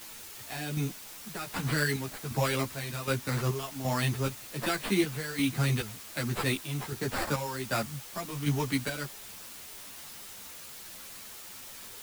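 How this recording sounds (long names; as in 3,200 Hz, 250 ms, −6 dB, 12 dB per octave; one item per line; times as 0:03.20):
aliases and images of a low sample rate 6,200 Hz, jitter 0%
chopped level 1.3 Hz, depth 60%, duty 55%
a quantiser's noise floor 8 bits, dither triangular
a shimmering, thickened sound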